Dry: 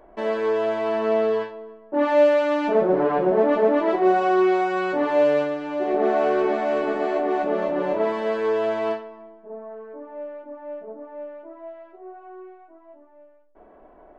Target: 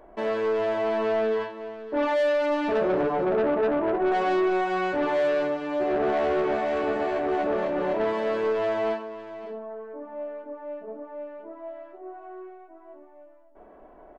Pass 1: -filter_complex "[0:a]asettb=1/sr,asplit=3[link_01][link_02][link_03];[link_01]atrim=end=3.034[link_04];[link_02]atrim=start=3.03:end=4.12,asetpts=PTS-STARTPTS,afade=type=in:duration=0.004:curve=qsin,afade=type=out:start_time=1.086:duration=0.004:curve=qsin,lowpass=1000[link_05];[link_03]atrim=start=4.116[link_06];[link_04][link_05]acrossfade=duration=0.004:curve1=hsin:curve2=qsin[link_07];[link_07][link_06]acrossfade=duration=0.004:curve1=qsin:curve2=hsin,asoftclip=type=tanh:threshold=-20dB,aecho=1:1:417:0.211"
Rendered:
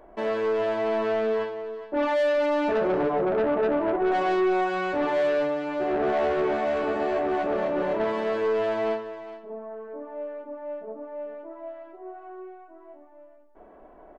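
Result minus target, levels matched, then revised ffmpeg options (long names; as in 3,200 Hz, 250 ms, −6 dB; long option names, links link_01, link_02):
echo 140 ms early
-filter_complex "[0:a]asettb=1/sr,asplit=3[link_01][link_02][link_03];[link_01]atrim=end=3.034[link_04];[link_02]atrim=start=3.03:end=4.12,asetpts=PTS-STARTPTS,afade=type=in:duration=0.004:curve=qsin,afade=type=out:start_time=1.086:duration=0.004:curve=qsin,lowpass=1000[link_05];[link_03]atrim=start=4.116[link_06];[link_04][link_05]acrossfade=duration=0.004:curve1=hsin:curve2=qsin[link_07];[link_07][link_06]acrossfade=duration=0.004:curve1=qsin:curve2=hsin,asoftclip=type=tanh:threshold=-20dB,aecho=1:1:557:0.211"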